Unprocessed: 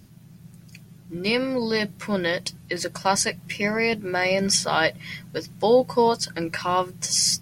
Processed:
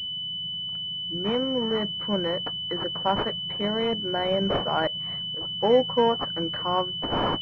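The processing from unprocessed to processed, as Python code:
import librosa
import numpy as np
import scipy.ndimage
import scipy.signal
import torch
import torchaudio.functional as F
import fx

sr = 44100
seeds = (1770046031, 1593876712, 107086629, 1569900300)

y = fx.auto_swell(x, sr, attack_ms=114.0, at=(4.87, 5.41))
y = fx.pwm(y, sr, carrier_hz=3000.0)
y = y * 10.0 ** (-2.0 / 20.0)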